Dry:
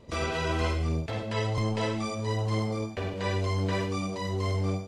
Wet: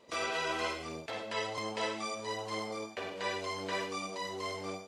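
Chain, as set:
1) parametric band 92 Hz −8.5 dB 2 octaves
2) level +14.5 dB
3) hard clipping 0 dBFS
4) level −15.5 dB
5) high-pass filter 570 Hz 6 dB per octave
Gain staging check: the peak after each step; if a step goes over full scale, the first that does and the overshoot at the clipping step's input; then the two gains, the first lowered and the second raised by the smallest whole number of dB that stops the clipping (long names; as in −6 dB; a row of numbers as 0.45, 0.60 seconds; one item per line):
−18.0, −3.5, −3.5, −19.0, −20.5 dBFS
no step passes full scale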